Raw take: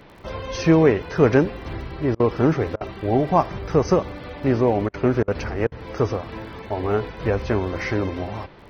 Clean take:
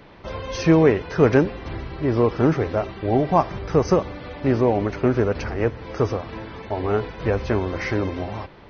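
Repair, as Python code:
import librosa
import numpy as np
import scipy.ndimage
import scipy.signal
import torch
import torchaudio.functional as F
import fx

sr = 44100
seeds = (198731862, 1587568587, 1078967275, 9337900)

y = fx.fix_declick_ar(x, sr, threshold=6.5)
y = fx.fix_interpolate(y, sr, at_s=(2.15, 2.76, 4.89, 5.23, 5.67), length_ms=47.0)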